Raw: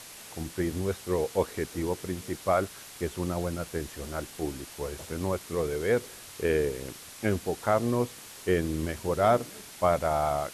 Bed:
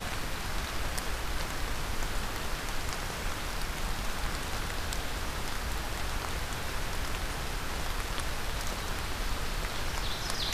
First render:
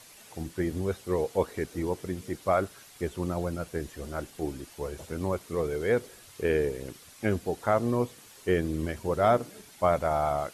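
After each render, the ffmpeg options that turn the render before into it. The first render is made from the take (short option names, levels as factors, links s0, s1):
-af "afftdn=nr=8:nf=-46"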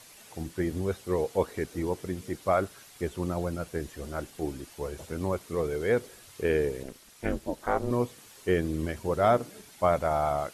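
-filter_complex "[0:a]asettb=1/sr,asplit=3[s0][s1][s2];[s0]atrim=end=6.834[s3];[s1]atrim=start=6.83:end=7.91,asetpts=PTS-STARTPTS,afade=t=in:d=0.004:c=qsin,afade=t=out:st=1.076:d=0.004:c=qsin,aeval=exprs='val(0)*sin(2*PI*130*n/s)':c=same[s4];[s2]atrim=start=7.906[s5];[s3][s4]acrossfade=d=0.004:c1=hsin:c2=qsin[s6];[s6][s5]acrossfade=d=0.004:c1=qsin:c2=hsin"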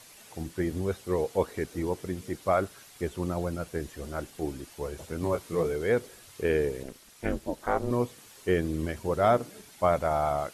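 -filter_complex "[0:a]asettb=1/sr,asplit=3[s0][s1][s2];[s0]atrim=end=5.214[s3];[s1]atrim=start=5.21:end=5.72,asetpts=PTS-STARTPTS,afade=t=in:d=0.004:c=qsin,afade=t=out:st=0.506:d=0.004:c=qsin,asplit=2[s4][s5];[s5]adelay=18,volume=0.631[s6];[s4][s6]amix=inputs=2:normalize=0,atrim=end_sample=22491[s7];[s2]atrim=start=5.716[s8];[s3][s7]acrossfade=d=0.004:c1=hsin:c2=qsin[s9];[s9][s8]acrossfade=d=0.004:c1=qsin:c2=hsin"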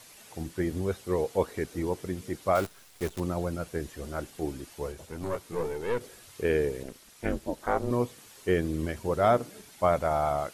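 -filter_complex "[0:a]asettb=1/sr,asplit=3[s0][s1][s2];[s0]atrim=end=2.554[s3];[s1]atrim=start=2.55:end=3.2,asetpts=PTS-STARTPTS,afade=t=in:d=0.004:c=qsin,afade=t=out:st=0.646:d=0.004:c=qsin,acrusher=bits=7:dc=4:mix=0:aa=0.000001[s4];[s2]atrim=start=3.196[s5];[s3][s4]acrossfade=d=0.004:c1=hsin:c2=qsin[s6];[s6][s5]acrossfade=d=0.004:c1=qsin:c2=hsin,asettb=1/sr,asplit=3[s7][s8][s9];[s7]atrim=end=4.924[s10];[s8]atrim=start=4.92:end=6.01,asetpts=PTS-STARTPTS,afade=t=in:d=0.004:c=qsin,afade=t=out:st=1.086:d=0.004:c=qsin,aeval=exprs='(tanh(12.6*val(0)+0.65)-tanh(0.65))/12.6':c=same[s11];[s9]atrim=start=6.006[s12];[s10][s11]acrossfade=d=0.004:c1=hsin:c2=qsin[s13];[s13][s12]acrossfade=d=0.004:c1=qsin:c2=hsin"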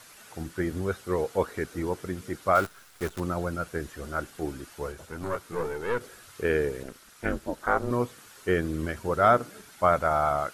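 -af "equalizer=f=1400:w=2.4:g=9.5"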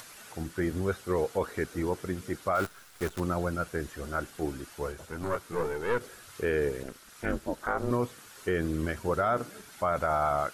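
-af "alimiter=limit=0.133:level=0:latency=1:release=20,acompressor=mode=upward:threshold=0.00631:ratio=2.5"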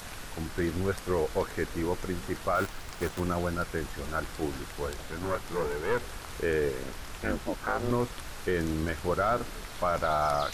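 -filter_complex "[1:a]volume=0.398[s0];[0:a][s0]amix=inputs=2:normalize=0"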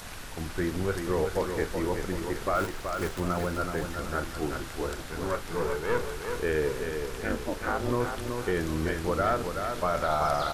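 -filter_complex "[0:a]asplit=2[s0][s1];[s1]adelay=39,volume=0.237[s2];[s0][s2]amix=inputs=2:normalize=0,asplit=2[s3][s4];[s4]aecho=0:1:377|754|1131|1508|1885:0.501|0.221|0.097|0.0427|0.0188[s5];[s3][s5]amix=inputs=2:normalize=0"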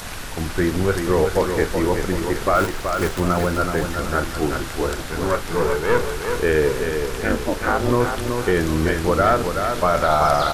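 -af "volume=2.99"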